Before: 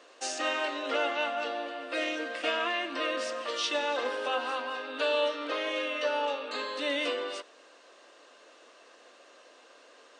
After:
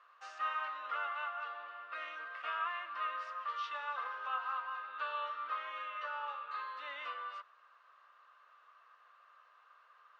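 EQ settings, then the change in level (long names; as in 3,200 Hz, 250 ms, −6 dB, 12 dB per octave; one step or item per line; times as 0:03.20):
four-pole ladder band-pass 1,300 Hz, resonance 70%
+1.5 dB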